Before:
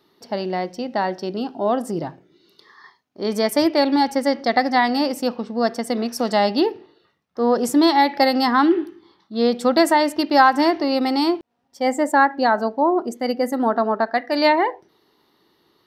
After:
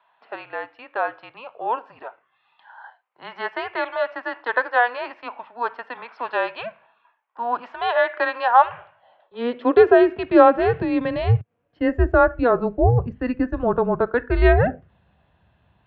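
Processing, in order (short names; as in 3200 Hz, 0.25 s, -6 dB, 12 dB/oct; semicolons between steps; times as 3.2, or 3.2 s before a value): mistuned SSB -240 Hz 220–3100 Hz; high-pass sweep 910 Hz -> 61 Hz, 8.51–12.27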